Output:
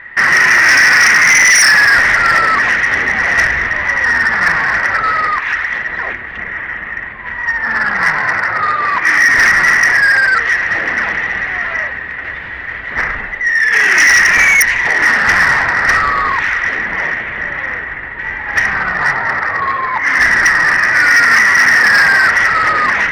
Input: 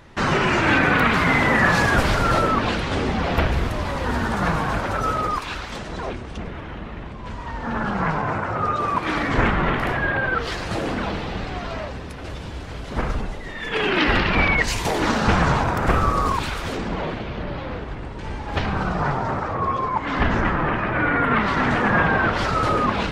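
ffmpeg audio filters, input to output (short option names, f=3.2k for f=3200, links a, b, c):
-af "lowpass=f=1.9k:t=q:w=13,tiltshelf=f=760:g=-7.5,acontrast=58,volume=-4.5dB"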